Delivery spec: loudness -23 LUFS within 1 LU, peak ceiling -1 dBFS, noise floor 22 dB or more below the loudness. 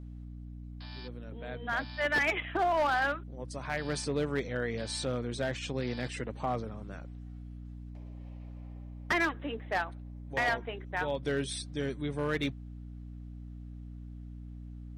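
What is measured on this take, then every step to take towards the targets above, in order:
clipped samples 0.8%; clipping level -23.0 dBFS; hum 60 Hz; highest harmonic 300 Hz; hum level -42 dBFS; loudness -33.0 LUFS; peak level -23.0 dBFS; loudness target -23.0 LUFS
-> clip repair -23 dBFS; hum notches 60/120/180/240/300 Hz; trim +10 dB

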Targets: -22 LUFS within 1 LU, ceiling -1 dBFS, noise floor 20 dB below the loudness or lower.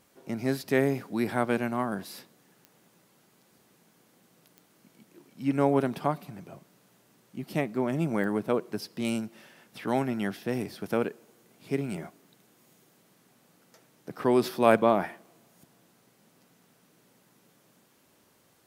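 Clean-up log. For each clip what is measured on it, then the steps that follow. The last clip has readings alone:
clicks found 4; loudness -29.0 LUFS; peak level -6.0 dBFS; loudness target -22.0 LUFS
-> de-click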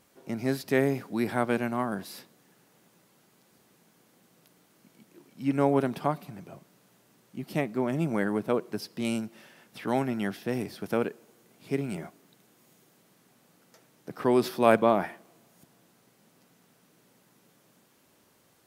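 clicks found 0; loudness -29.0 LUFS; peak level -6.0 dBFS; loudness target -22.0 LUFS
-> trim +7 dB; peak limiter -1 dBFS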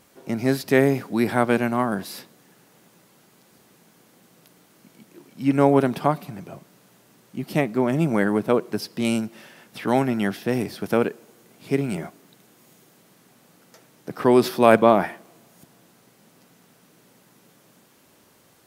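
loudness -22.0 LUFS; peak level -1.0 dBFS; noise floor -57 dBFS

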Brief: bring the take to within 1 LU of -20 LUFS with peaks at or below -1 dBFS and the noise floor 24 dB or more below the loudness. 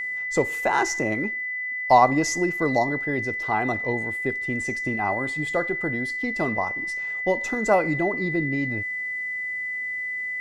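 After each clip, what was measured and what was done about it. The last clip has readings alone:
tick rate 23 per s; steady tone 2 kHz; tone level -27 dBFS; loudness -24.0 LUFS; peak level -4.0 dBFS; loudness target -20.0 LUFS
-> de-click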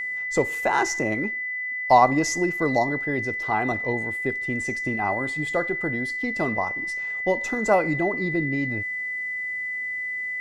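tick rate 0 per s; steady tone 2 kHz; tone level -27 dBFS
-> band-stop 2 kHz, Q 30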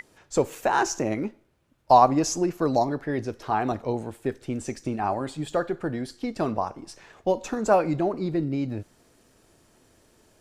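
steady tone not found; loudness -26.0 LUFS; peak level -5.0 dBFS; loudness target -20.0 LUFS
-> trim +6 dB; peak limiter -1 dBFS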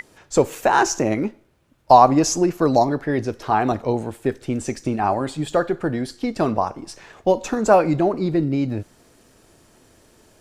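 loudness -20.5 LUFS; peak level -1.0 dBFS; noise floor -56 dBFS

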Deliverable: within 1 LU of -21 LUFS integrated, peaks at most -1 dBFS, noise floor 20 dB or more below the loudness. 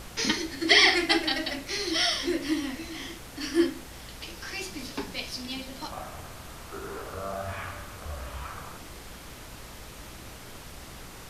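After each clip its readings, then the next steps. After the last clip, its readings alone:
hum 60 Hz; highest harmonic 180 Hz; hum level -50 dBFS; noise floor -45 dBFS; noise floor target -48 dBFS; loudness -27.5 LUFS; peak level -3.5 dBFS; loudness target -21.0 LUFS
-> de-hum 60 Hz, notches 3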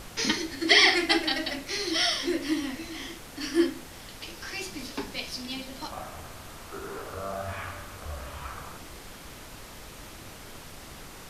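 hum not found; noise floor -45 dBFS; noise floor target -47 dBFS
-> noise print and reduce 6 dB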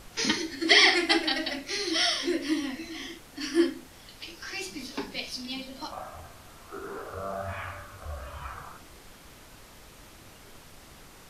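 noise floor -51 dBFS; loudness -27.0 LUFS; peak level -3.5 dBFS; loudness target -21.0 LUFS
-> trim +6 dB; peak limiter -1 dBFS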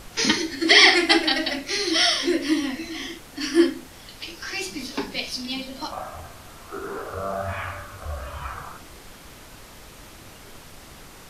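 loudness -21.0 LUFS; peak level -1.0 dBFS; noise floor -45 dBFS

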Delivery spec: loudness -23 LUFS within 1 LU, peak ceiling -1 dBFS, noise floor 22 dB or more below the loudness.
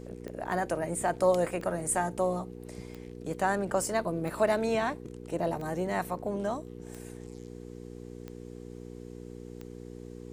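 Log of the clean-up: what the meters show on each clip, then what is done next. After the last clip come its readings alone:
clicks found 8; hum 60 Hz; highest harmonic 480 Hz; hum level -42 dBFS; loudness -31.0 LUFS; peak level -13.0 dBFS; loudness target -23.0 LUFS
-> de-click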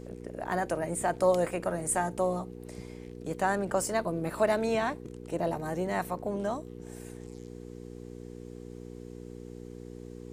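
clicks found 0; hum 60 Hz; highest harmonic 480 Hz; hum level -42 dBFS
-> de-hum 60 Hz, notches 8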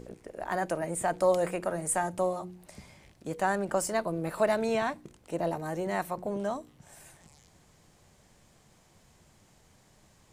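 hum not found; loudness -31.0 LUFS; peak level -13.5 dBFS; loudness target -23.0 LUFS
-> trim +8 dB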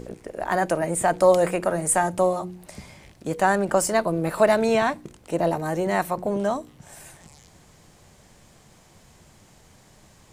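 loudness -23.0 LUFS; peak level -5.5 dBFS; noise floor -54 dBFS

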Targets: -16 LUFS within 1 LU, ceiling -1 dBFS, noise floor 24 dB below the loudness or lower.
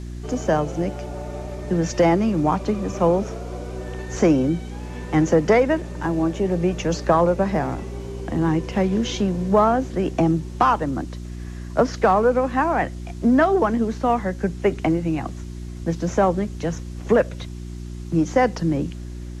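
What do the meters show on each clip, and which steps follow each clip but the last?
hum 60 Hz; highest harmonic 360 Hz; hum level -30 dBFS; loudness -21.5 LUFS; peak level -5.0 dBFS; loudness target -16.0 LUFS
-> de-hum 60 Hz, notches 6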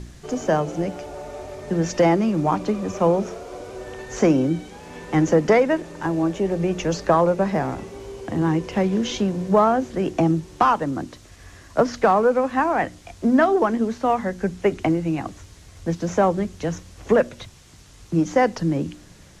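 hum not found; loudness -21.5 LUFS; peak level -5.5 dBFS; loudness target -16.0 LUFS
-> trim +5.5 dB; peak limiter -1 dBFS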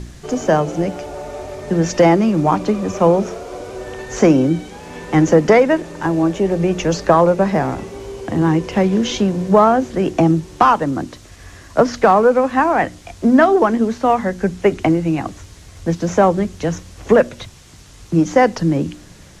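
loudness -16.0 LUFS; peak level -1.0 dBFS; noise floor -42 dBFS

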